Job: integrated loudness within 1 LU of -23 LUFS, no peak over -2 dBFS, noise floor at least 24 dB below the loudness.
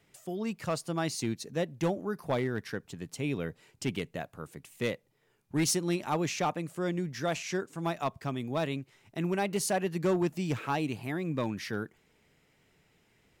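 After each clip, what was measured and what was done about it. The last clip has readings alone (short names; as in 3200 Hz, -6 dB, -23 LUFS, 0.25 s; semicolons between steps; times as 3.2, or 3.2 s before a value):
clipped 0.7%; flat tops at -22.0 dBFS; loudness -33.0 LUFS; peak -22.0 dBFS; loudness target -23.0 LUFS
-> clip repair -22 dBFS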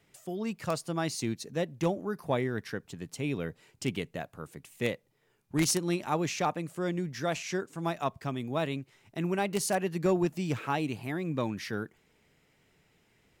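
clipped 0.0%; loudness -32.5 LUFS; peak -13.0 dBFS; loudness target -23.0 LUFS
-> gain +9.5 dB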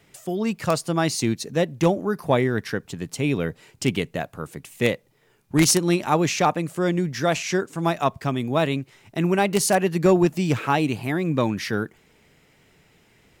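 loudness -23.0 LUFS; peak -3.5 dBFS; noise floor -60 dBFS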